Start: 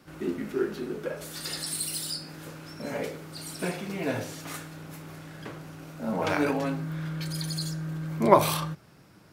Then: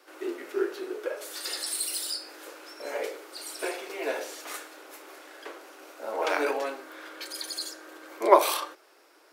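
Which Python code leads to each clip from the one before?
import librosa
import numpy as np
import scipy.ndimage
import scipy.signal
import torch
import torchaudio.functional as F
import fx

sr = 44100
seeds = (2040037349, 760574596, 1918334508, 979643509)

y = scipy.signal.sosfilt(scipy.signal.butter(8, 340.0, 'highpass', fs=sr, output='sos'), x)
y = F.gain(torch.from_numpy(y), 1.0).numpy()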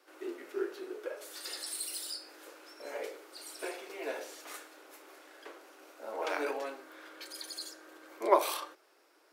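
y = fx.low_shelf(x, sr, hz=160.0, db=4.5)
y = F.gain(torch.from_numpy(y), -7.5).numpy()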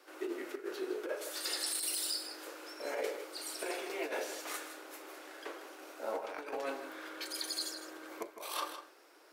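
y = fx.over_compress(x, sr, threshold_db=-39.0, ratio=-0.5)
y = y + 10.0 ** (-10.5 / 20.0) * np.pad(y, (int(158 * sr / 1000.0), 0))[:len(y)]
y = F.gain(torch.from_numpy(y), 1.0).numpy()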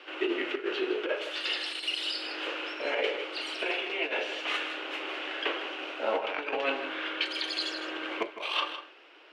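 y = fx.lowpass_res(x, sr, hz=2900.0, q=5.2)
y = fx.rider(y, sr, range_db=4, speed_s=0.5)
y = F.gain(torch.from_numpy(y), 6.5).numpy()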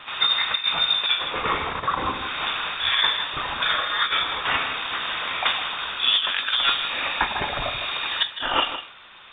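y = fx.dmg_noise_colour(x, sr, seeds[0], colour='white', level_db=-66.0)
y = fx.freq_invert(y, sr, carrier_hz=4000)
y = F.gain(torch.from_numpy(y), 8.5).numpy()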